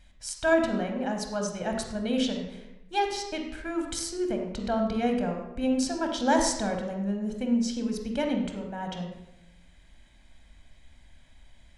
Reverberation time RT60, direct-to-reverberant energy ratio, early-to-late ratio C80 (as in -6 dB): 0.90 s, 3.0 dB, 7.0 dB